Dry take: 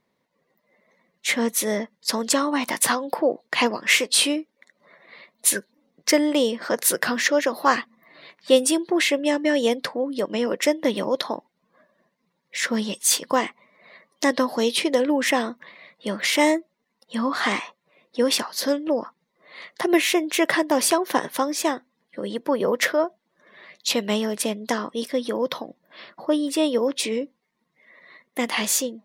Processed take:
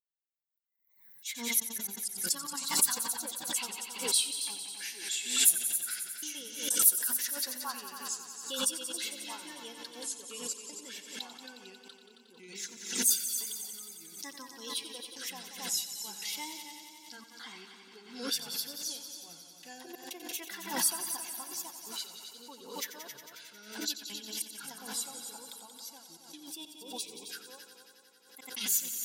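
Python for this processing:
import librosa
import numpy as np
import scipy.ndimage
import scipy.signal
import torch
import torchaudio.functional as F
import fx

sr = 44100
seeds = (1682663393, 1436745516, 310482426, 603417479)

p1 = fx.bin_expand(x, sr, power=1.5)
p2 = fx.echo_pitch(p1, sr, ms=187, semitones=-3, count=2, db_per_echo=-6.0)
p3 = fx.graphic_eq(p2, sr, hz=(500, 2000, 8000), db=(-6, -9, -5))
p4 = fx.step_gate(p3, sr, bpm=94, pattern='xxxxxxxxxx.xx.', floor_db=-60.0, edge_ms=4.5)
p5 = librosa.effects.preemphasis(p4, coef=0.97, zi=[0.0])
p6 = fx.notch_comb(p5, sr, f0_hz=610.0)
p7 = p6 + fx.echo_heads(p6, sr, ms=90, heads='all three', feedback_pct=62, wet_db=-12.5, dry=0)
p8 = fx.wow_flutter(p7, sr, seeds[0], rate_hz=2.1, depth_cents=32.0)
p9 = fx.pre_swell(p8, sr, db_per_s=89.0)
y = p9 * 10.0 ** (1.0 / 20.0)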